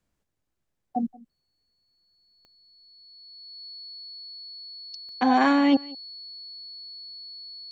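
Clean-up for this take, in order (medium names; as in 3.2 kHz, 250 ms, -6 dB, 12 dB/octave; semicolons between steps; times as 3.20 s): de-click; band-stop 4.4 kHz, Q 30; inverse comb 180 ms -22.5 dB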